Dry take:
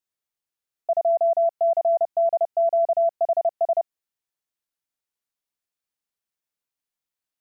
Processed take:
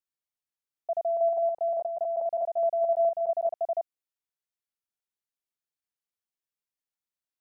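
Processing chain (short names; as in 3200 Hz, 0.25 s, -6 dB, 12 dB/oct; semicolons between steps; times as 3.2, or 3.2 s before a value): 0.96–3.54 reverse delay 0.209 s, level -3 dB; gain -7.5 dB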